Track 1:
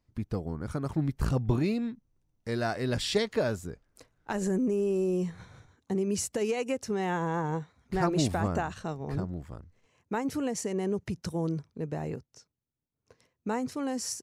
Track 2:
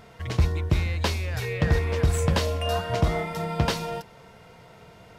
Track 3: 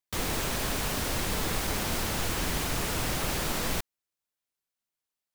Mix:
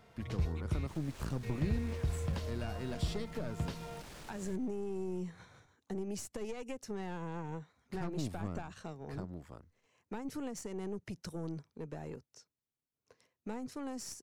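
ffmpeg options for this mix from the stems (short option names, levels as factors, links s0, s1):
-filter_complex "[0:a]lowshelf=f=190:g=-9.5,aeval=exprs='(tanh(17.8*val(0)+0.55)-tanh(0.55))/17.8':c=same,volume=0.891[s0];[1:a]volume=0.251,asplit=3[s1][s2][s3];[s1]atrim=end=0.87,asetpts=PTS-STARTPTS,afade=t=out:st=0.866:d=0.004:c=hsin[s4];[s2]atrim=start=0.87:end=1.43,asetpts=PTS-STARTPTS,volume=0[s5];[s3]atrim=start=1.43,asetpts=PTS-STARTPTS,afade=t=in:d=0.004:c=hsin[s6];[s4][s5][s6]concat=n=3:v=0:a=1[s7];[2:a]acrossover=split=10000[s8][s9];[s9]acompressor=threshold=0.00398:ratio=4:attack=1:release=60[s10];[s8][s10]amix=inputs=2:normalize=0,asoftclip=type=tanh:threshold=0.0335,adelay=750,volume=0.15[s11];[s0][s7][s11]amix=inputs=3:normalize=0,acrossover=split=280[s12][s13];[s13]acompressor=threshold=0.00631:ratio=4[s14];[s12][s14]amix=inputs=2:normalize=0"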